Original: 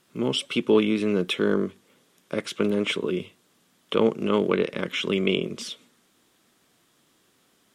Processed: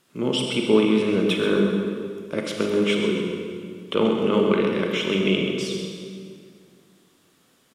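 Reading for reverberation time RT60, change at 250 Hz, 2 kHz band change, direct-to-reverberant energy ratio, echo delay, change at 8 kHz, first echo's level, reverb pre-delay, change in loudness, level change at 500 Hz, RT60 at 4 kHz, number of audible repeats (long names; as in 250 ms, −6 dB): 2.2 s, +3.5 dB, +2.5 dB, 0.5 dB, 131 ms, +2.5 dB, −9.0 dB, 28 ms, +2.5 dB, +3.0 dB, 1.7 s, 1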